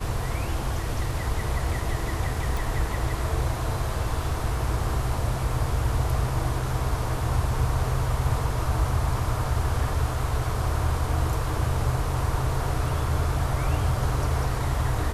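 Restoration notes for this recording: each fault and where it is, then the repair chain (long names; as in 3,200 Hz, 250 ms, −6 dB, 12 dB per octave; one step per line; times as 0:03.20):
0:02.57: click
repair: click removal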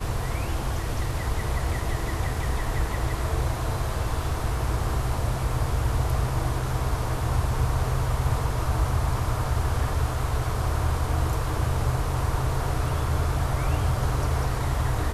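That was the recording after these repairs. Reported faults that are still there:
none of them is left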